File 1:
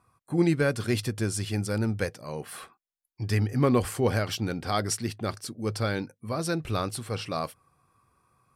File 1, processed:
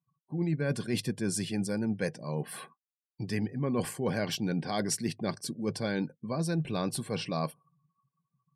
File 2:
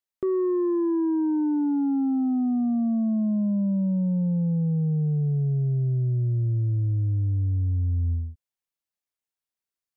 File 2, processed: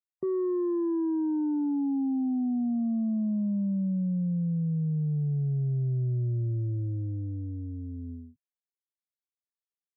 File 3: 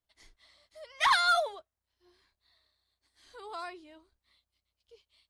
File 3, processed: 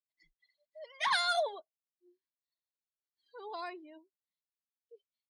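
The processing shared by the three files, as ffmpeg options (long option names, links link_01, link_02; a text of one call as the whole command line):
ffmpeg -i in.wav -af "asuperstop=centerf=1300:order=4:qfactor=5.2,lowshelf=frequency=110:width_type=q:width=3:gain=-12,areverse,acompressor=threshold=-26dB:ratio=16,areverse,afftdn=noise_reduction=31:noise_floor=-52" out.wav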